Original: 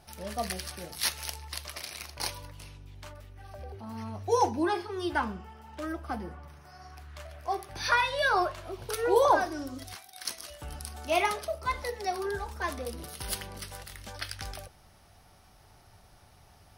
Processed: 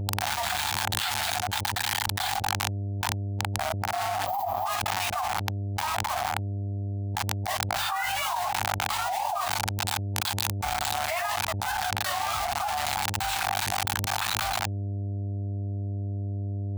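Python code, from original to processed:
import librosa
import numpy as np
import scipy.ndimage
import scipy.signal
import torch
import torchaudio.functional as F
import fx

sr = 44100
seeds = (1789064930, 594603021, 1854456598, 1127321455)

p1 = scipy.signal.sosfilt(scipy.signal.ellip(3, 1.0, 70, [160.0, 790.0], 'bandstop', fs=sr, output='sos'), x)
p2 = fx.air_absorb(p1, sr, metres=81.0)
p3 = (np.mod(10.0 ** (29.5 / 20.0) * p2 + 1.0, 2.0) - 1.0) / 10.0 ** (29.5 / 20.0)
p4 = p2 + F.gain(torch.from_numpy(p3), -7.0).numpy()
p5 = fx.quant_dither(p4, sr, seeds[0], bits=6, dither='none')
p6 = fx.low_shelf_res(p5, sr, hz=610.0, db=-11.5, q=3.0)
p7 = fx.dmg_buzz(p6, sr, base_hz=100.0, harmonics=9, level_db=-58.0, tilt_db=-9, odd_only=False)
p8 = fx.formant_shift(p7, sr, semitones=-4)
p9 = fx.spec_box(p8, sr, start_s=4.26, length_s=0.4, low_hz=1300.0, high_hz=12000.0, gain_db=-16)
p10 = fx.env_flatten(p9, sr, amount_pct=100)
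y = F.gain(torch.from_numpy(p10), -12.0).numpy()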